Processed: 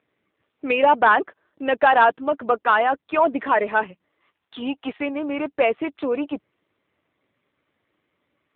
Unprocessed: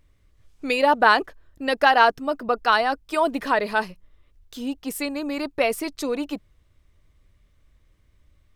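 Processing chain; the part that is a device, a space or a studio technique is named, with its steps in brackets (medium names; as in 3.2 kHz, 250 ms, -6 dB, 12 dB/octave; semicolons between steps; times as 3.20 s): time-frequency box 4.21–4.97 s, 680–7100 Hz +8 dB; telephone (band-pass 270–3100 Hz; saturation -11 dBFS, distortion -14 dB; trim +4.5 dB; AMR-NB 7.4 kbps 8 kHz)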